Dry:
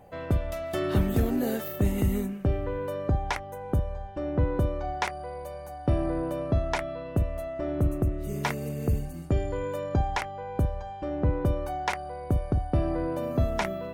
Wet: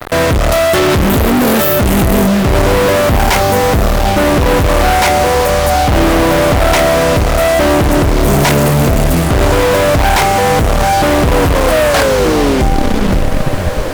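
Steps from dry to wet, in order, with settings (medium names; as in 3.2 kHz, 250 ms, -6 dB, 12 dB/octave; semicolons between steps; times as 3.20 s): tape stop on the ending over 2.58 s; fuzz box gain 54 dB, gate -47 dBFS; echo that smears into a reverb 1846 ms, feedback 42%, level -10 dB; trim +4 dB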